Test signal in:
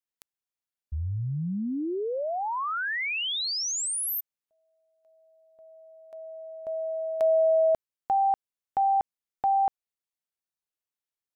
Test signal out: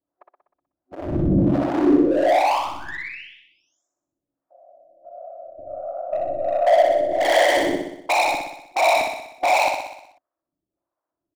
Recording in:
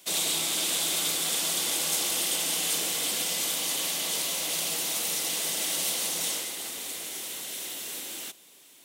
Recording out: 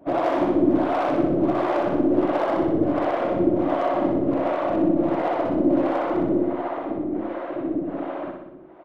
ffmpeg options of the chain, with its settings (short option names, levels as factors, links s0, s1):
-filter_complex "[0:a]lowpass=f=1200:w=0.5412,lowpass=f=1200:w=1.3066,afftfilt=real='hypot(re,im)*cos(2*PI*random(0))':imag='hypot(re,im)*sin(2*PI*random(1))':win_size=512:overlap=0.75,equalizer=f=180:w=1.2:g=2.5,aresample=16000,aeval=exprs='0.126*sin(PI/2*4.47*val(0)/0.126)':c=same,aresample=44100,aeval=exprs='0.133*(cos(1*acos(clip(val(0)/0.133,-1,1)))-cos(1*PI/2))+0.00335*(cos(5*acos(clip(val(0)/0.133,-1,1)))-cos(5*PI/2))+0.00531*(cos(8*acos(clip(val(0)/0.133,-1,1)))-cos(8*PI/2))':c=same,volume=15.8,asoftclip=hard,volume=0.0631,superequalizer=6b=3.98:8b=2.24,acrossover=split=480[s0][s1];[s0]aeval=exprs='val(0)*(1-1/2+1/2*cos(2*PI*1.4*n/s))':c=same[s2];[s1]aeval=exprs='val(0)*(1-1/2-1/2*cos(2*PI*1.4*n/s))':c=same[s3];[s2][s3]amix=inputs=2:normalize=0,asplit=2[s4][s5];[s5]aecho=0:1:62|124|186|248|310|372|434|496:0.596|0.351|0.207|0.122|0.0722|0.0426|0.0251|0.0148[s6];[s4][s6]amix=inputs=2:normalize=0,volume=2"